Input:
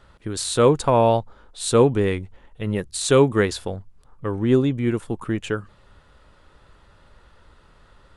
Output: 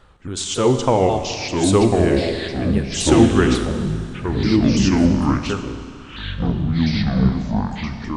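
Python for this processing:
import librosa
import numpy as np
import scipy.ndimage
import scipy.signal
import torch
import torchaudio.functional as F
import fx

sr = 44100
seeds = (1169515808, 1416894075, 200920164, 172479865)

y = fx.pitch_ramps(x, sr, semitones=-4.5, every_ms=273)
y = fx.echo_pitch(y, sr, ms=756, semitones=-5, count=3, db_per_echo=-3.0)
y = fx.rev_schroeder(y, sr, rt60_s=2.5, comb_ms=31, drr_db=8.0)
y = F.gain(torch.from_numpy(y), 2.0).numpy()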